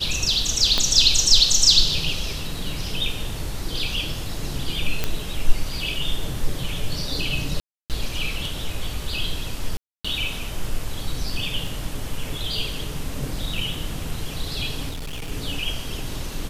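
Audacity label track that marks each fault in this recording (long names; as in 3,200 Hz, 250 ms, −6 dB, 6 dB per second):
0.780000	0.780000	click −7 dBFS
5.040000	5.040000	click −7 dBFS
7.600000	7.900000	drop-out 298 ms
9.770000	10.040000	drop-out 275 ms
11.670000	11.670000	drop-out 3 ms
14.890000	15.320000	clipping −27.5 dBFS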